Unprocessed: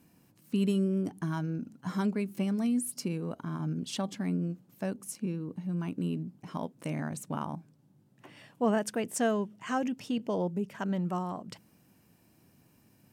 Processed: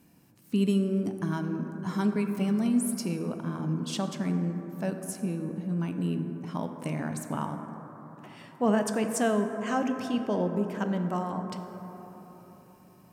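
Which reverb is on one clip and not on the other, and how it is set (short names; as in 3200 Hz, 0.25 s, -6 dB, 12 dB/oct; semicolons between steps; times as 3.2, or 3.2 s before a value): plate-style reverb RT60 4.3 s, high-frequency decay 0.25×, DRR 5.5 dB; gain +2 dB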